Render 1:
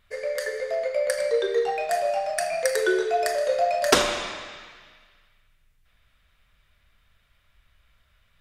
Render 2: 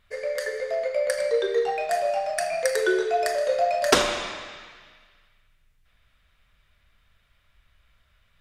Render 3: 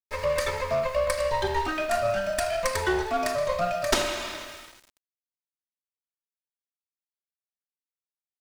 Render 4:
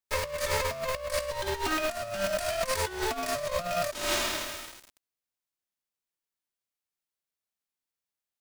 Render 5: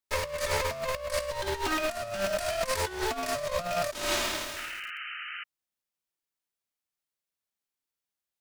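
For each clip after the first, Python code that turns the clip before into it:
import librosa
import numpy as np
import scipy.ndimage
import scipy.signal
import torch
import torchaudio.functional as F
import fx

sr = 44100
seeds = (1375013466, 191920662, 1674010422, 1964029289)

y1 = fx.high_shelf(x, sr, hz=10000.0, db=-4.0)
y2 = fx.lower_of_two(y1, sr, delay_ms=3.2)
y2 = fx.rider(y2, sr, range_db=4, speed_s=0.5)
y2 = np.where(np.abs(y2) >= 10.0 ** (-44.0 / 20.0), y2, 0.0)
y3 = fx.envelope_flatten(y2, sr, power=0.6)
y3 = fx.over_compress(y3, sr, threshold_db=-30.0, ratio=-0.5)
y4 = fx.spec_paint(y3, sr, seeds[0], shape='noise', start_s=4.56, length_s=0.88, low_hz=1200.0, high_hz=3100.0, level_db=-39.0)
y4 = fx.doppler_dist(y4, sr, depth_ms=0.14)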